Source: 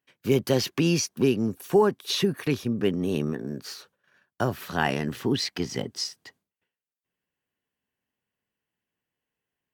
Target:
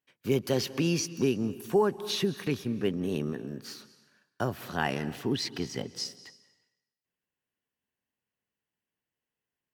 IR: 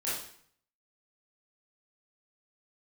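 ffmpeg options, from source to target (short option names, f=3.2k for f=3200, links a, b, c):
-filter_complex "[0:a]asplit=2[a][b];[1:a]atrim=start_sample=2205,asetrate=26901,aresample=44100,adelay=135[c];[b][c]afir=irnorm=-1:irlink=0,volume=-25.5dB[d];[a][d]amix=inputs=2:normalize=0,volume=-4.5dB"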